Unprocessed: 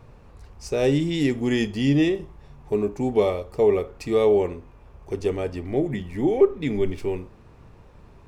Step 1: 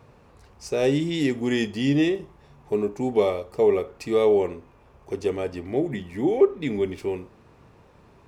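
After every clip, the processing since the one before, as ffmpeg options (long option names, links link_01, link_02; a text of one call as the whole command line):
ffmpeg -i in.wav -af "highpass=frequency=160:poles=1" out.wav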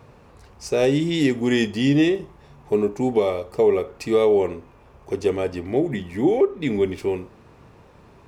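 ffmpeg -i in.wav -af "alimiter=limit=-13dB:level=0:latency=1:release=261,volume=4dB" out.wav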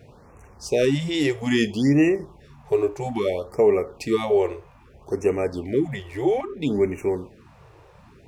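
ffmpeg -i in.wav -af "afftfilt=real='re*(1-between(b*sr/1024,200*pow(4100/200,0.5+0.5*sin(2*PI*0.61*pts/sr))/1.41,200*pow(4100/200,0.5+0.5*sin(2*PI*0.61*pts/sr))*1.41))':imag='im*(1-between(b*sr/1024,200*pow(4100/200,0.5+0.5*sin(2*PI*0.61*pts/sr))/1.41,200*pow(4100/200,0.5+0.5*sin(2*PI*0.61*pts/sr))*1.41))':win_size=1024:overlap=0.75" out.wav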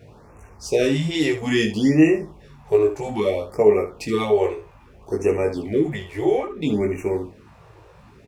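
ffmpeg -i in.wav -af "aecho=1:1:19|74:0.708|0.299" out.wav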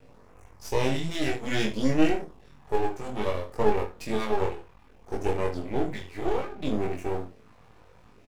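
ffmpeg -i in.wav -filter_complex "[0:a]aeval=exprs='max(val(0),0)':channel_layout=same,asplit=2[link_01][link_02];[link_02]adelay=23,volume=-4.5dB[link_03];[link_01][link_03]amix=inputs=2:normalize=0,volume=-4.5dB" out.wav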